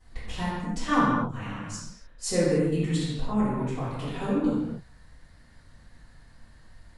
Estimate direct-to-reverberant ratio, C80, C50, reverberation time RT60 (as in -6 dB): -14.0 dB, 0.5 dB, -2.0 dB, not exponential